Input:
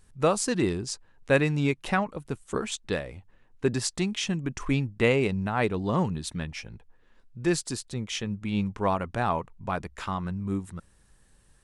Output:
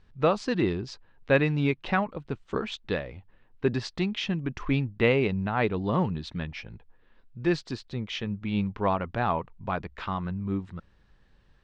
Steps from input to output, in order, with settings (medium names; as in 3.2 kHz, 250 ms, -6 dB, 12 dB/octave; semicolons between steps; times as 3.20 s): low-pass 4.3 kHz 24 dB/octave